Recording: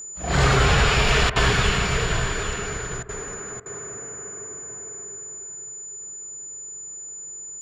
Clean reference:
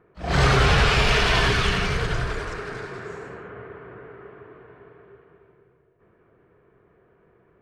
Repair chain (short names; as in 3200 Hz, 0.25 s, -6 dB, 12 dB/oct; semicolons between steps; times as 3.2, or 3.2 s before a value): notch 7000 Hz, Q 30; interpolate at 1.3/3.03/3.6, 58 ms; inverse comb 0.806 s -9 dB